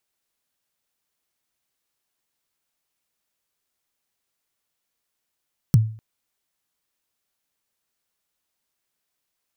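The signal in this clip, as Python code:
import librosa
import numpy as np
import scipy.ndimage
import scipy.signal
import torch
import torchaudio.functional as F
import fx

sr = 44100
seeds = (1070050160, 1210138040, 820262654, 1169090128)

y = fx.drum_kick(sr, seeds[0], length_s=0.25, level_db=-7.5, start_hz=170.0, end_hz=110.0, sweep_ms=25.0, decay_s=0.43, click=True)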